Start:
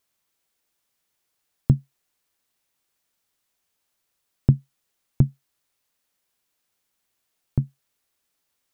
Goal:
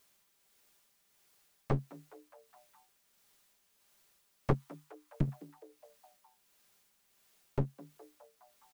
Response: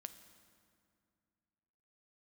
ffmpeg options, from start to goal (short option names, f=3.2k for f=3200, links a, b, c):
-filter_complex "[0:a]asplit=3[a][b][c];[a]afade=t=out:st=4.52:d=0.02[d];[b]equalizer=f=125:t=o:w=1:g=-9,equalizer=f=250:t=o:w=1:g=-9,equalizer=f=500:t=o:w=1:g=-12,equalizer=f=1k:t=o:w=1:g=9,afade=t=in:st=4.52:d=0.02,afade=t=out:st=5.27:d=0.02[e];[c]afade=t=in:st=5.27:d=0.02[f];[d][e][f]amix=inputs=3:normalize=0,asplit=2[g][h];[h]aeval=exprs='0.75*sin(PI/2*7.94*val(0)/0.75)':c=same,volume=-8dB[i];[g][i]amix=inputs=2:normalize=0,aecho=1:1:5:0.36,aeval=exprs='clip(val(0),-1,0.0531)':c=same,tremolo=f=1.5:d=0.41,asplit=2[j][k];[k]asplit=5[l][m][n][o][p];[l]adelay=207,afreqshift=150,volume=-21dB[q];[m]adelay=414,afreqshift=300,volume=-24.9dB[r];[n]adelay=621,afreqshift=450,volume=-28.8dB[s];[o]adelay=828,afreqshift=600,volume=-32.6dB[t];[p]adelay=1035,afreqshift=750,volume=-36.5dB[u];[q][r][s][t][u]amix=inputs=5:normalize=0[v];[j][v]amix=inputs=2:normalize=0,volume=-8.5dB"